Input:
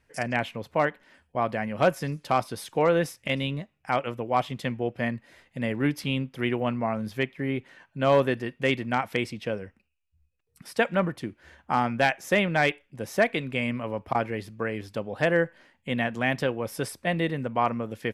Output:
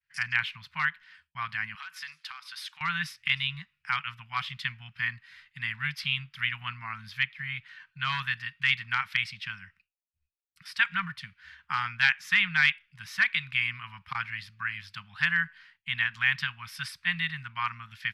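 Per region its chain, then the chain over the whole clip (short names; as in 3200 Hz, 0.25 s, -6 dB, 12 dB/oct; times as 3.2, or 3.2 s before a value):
1.75–2.81 HPF 730 Hz + compressor 10:1, threshold -35 dBFS
whole clip: elliptic band-stop 170–1000 Hz, stop band 50 dB; expander -59 dBFS; band shelf 2600 Hz +13.5 dB 2.3 oct; gain -8.5 dB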